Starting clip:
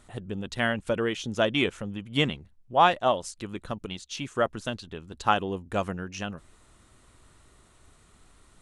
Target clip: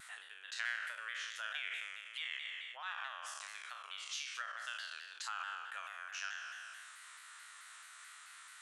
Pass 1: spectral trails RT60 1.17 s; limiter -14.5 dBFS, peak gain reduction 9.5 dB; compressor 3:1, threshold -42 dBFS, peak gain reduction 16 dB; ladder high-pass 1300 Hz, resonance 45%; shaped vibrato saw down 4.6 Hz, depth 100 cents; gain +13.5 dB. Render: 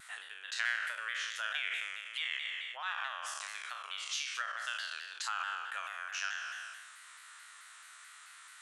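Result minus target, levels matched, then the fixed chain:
compressor: peak gain reduction -5.5 dB
spectral trails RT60 1.17 s; limiter -14.5 dBFS, peak gain reduction 9.5 dB; compressor 3:1, threshold -50 dBFS, peak gain reduction 21.5 dB; ladder high-pass 1300 Hz, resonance 45%; shaped vibrato saw down 4.6 Hz, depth 100 cents; gain +13.5 dB

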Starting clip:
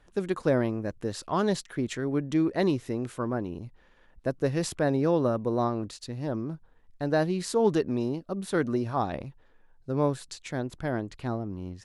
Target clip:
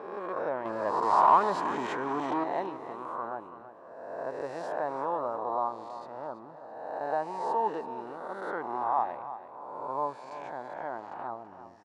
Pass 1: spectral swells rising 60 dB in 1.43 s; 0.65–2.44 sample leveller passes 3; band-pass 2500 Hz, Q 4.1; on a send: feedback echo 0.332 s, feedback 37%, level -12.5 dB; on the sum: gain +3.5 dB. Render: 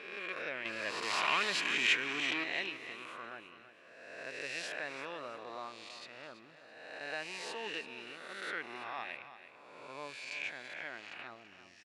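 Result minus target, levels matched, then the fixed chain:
2000 Hz band +13.0 dB
spectral swells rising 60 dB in 1.43 s; 0.65–2.44 sample leveller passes 3; band-pass 910 Hz, Q 4.1; on a send: feedback echo 0.332 s, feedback 37%, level -12.5 dB; on the sum: gain +3.5 dB

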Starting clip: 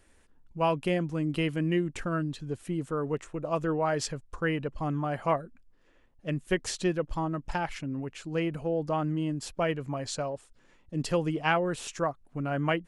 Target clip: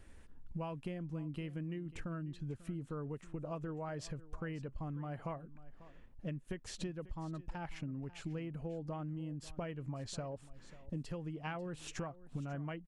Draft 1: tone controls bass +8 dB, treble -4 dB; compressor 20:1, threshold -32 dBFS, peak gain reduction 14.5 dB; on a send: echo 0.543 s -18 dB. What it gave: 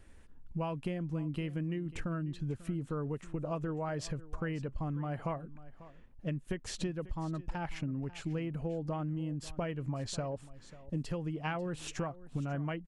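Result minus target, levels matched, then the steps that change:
compressor: peak gain reduction -5.5 dB
change: compressor 20:1, threshold -38 dBFS, peak gain reduction 20.5 dB

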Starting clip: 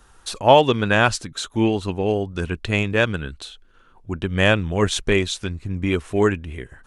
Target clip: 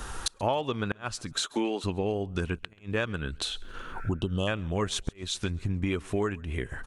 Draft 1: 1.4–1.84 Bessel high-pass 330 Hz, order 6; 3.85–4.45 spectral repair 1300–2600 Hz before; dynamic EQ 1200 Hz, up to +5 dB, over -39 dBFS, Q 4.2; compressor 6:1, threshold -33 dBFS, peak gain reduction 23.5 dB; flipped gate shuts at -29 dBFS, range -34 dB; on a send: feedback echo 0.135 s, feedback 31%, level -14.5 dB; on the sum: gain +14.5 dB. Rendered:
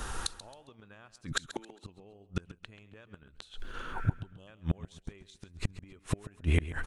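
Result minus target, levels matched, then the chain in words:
compressor: peak gain reduction -8.5 dB; echo-to-direct +11 dB
1.4–1.84 Bessel high-pass 330 Hz, order 6; 3.85–4.45 spectral repair 1300–2600 Hz before; dynamic EQ 1200 Hz, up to +5 dB, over -39 dBFS, Q 4.2; compressor 6:1, threshold -43 dBFS, peak gain reduction 32 dB; flipped gate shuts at -29 dBFS, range -34 dB; on a send: feedback echo 0.135 s, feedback 31%, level -25.5 dB; on the sum: gain +14.5 dB

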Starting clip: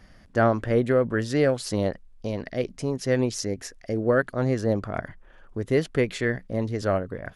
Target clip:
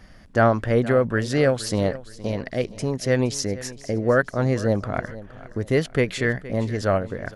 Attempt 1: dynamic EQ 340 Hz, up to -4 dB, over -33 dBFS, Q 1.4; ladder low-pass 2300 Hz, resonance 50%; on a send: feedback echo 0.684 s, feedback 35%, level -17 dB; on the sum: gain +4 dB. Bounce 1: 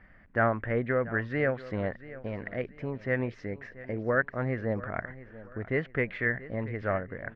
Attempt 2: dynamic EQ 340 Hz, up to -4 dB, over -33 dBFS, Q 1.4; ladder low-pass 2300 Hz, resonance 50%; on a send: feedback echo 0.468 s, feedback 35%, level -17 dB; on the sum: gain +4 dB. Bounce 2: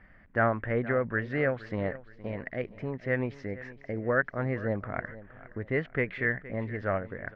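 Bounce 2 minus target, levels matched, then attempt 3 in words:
2000 Hz band +5.0 dB
dynamic EQ 340 Hz, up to -4 dB, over -33 dBFS, Q 1.4; on a send: feedback echo 0.468 s, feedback 35%, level -17 dB; on the sum: gain +4 dB

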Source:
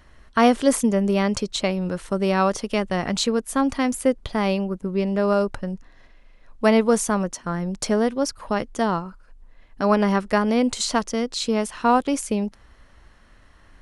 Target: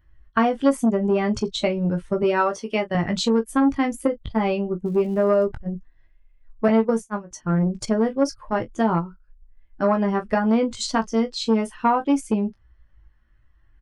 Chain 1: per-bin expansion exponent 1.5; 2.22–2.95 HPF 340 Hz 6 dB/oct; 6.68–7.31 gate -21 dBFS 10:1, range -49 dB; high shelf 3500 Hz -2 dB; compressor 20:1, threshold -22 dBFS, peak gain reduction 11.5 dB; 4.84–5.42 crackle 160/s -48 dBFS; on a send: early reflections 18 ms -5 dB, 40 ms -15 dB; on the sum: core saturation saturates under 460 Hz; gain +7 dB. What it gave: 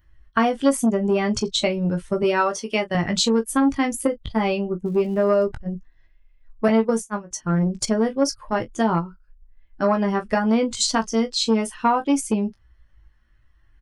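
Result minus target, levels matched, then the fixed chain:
8000 Hz band +7.5 dB
per-bin expansion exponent 1.5; 2.22–2.95 HPF 340 Hz 6 dB/oct; 6.68–7.31 gate -21 dBFS 10:1, range -49 dB; high shelf 3500 Hz -12.5 dB; compressor 20:1, threshold -22 dBFS, peak gain reduction 11 dB; 4.84–5.42 crackle 160/s -48 dBFS; on a send: early reflections 18 ms -5 dB, 40 ms -15 dB; on the sum: core saturation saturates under 460 Hz; gain +7 dB

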